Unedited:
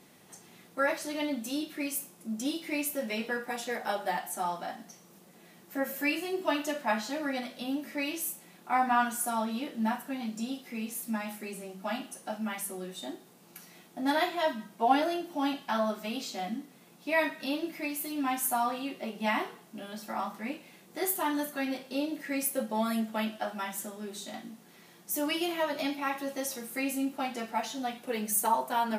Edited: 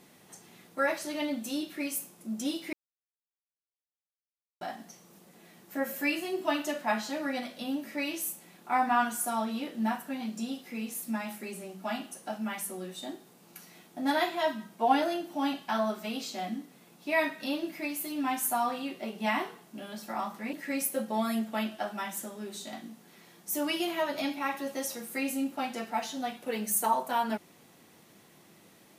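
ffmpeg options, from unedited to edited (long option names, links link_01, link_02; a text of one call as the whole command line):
ffmpeg -i in.wav -filter_complex "[0:a]asplit=4[link_01][link_02][link_03][link_04];[link_01]atrim=end=2.73,asetpts=PTS-STARTPTS,afade=type=out:start_time=2.726:duration=0.004:curve=hsin[link_05];[link_02]atrim=start=2.73:end=4.61,asetpts=PTS-STARTPTS,volume=0[link_06];[link_03]atrim=start=4.61:end=20.532,asetpts=PTS-STARTPTS,afade=type=in:duration=0.004:curve=hsin[link_07];[link_04]atrim=start=22.138[link_08];[link_05][link_06][link_07]concat=n=3:v=0:a=1[link_09];[link_09][link_08]acrossfade=duration=0.004:curve1=hsin:curve2=hsin" out.wav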